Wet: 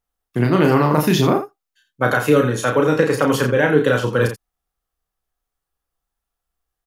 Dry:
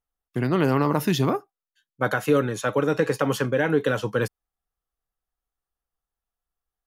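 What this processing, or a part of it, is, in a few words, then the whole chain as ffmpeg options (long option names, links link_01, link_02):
slapback doubling: -filter_complex "[0:a]asplit=3[link_01][link_02][link_03];[link_02]adelay=33,volume=-4dB[link_04];[link_03]adelay=84,volume=-10dB[link_05];[link_01][link_04][link_05]amix=inputs=3:normalize=0,volume=5dB"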